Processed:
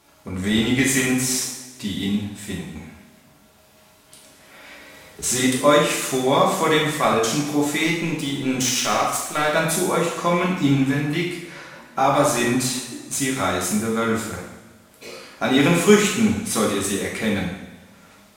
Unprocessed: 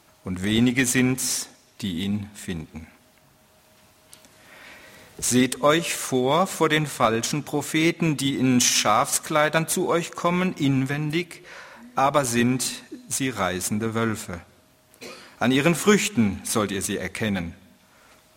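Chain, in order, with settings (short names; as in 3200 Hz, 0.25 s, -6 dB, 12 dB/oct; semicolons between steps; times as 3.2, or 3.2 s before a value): 7.84–9.53 power-law curve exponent 1.4; two-slope reverb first 0.81 s, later 2.2 s, from -18 dB, DRR -4 dB; gain -2.5 dB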